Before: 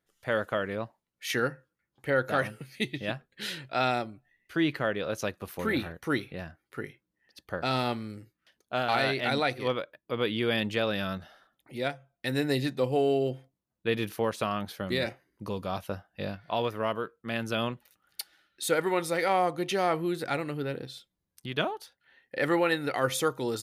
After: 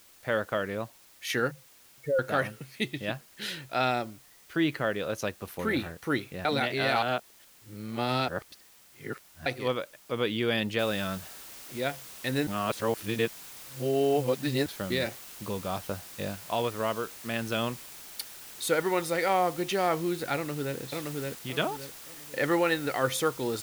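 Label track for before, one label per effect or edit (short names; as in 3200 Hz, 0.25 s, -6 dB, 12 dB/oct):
1.510000	2.190000	spectral contrast raised exponent 3.3
6.450000	9.460000	reverse
10.790000	10.790000	noise floor step -57 dB -46 dB
12.470000	14.660000	reverse
20.350000	20.770000	echo throw 0.57 s, feedback 35%, level -2 dB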